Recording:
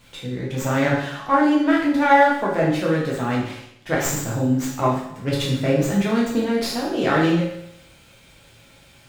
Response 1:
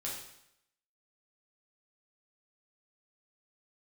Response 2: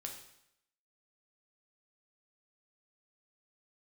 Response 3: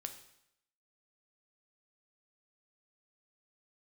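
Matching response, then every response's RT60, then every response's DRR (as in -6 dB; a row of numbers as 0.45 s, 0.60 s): 1; 0.80 s, 0.80 s, 0.80 s; -5.0 dB, 1.5 dB, 6.5 dB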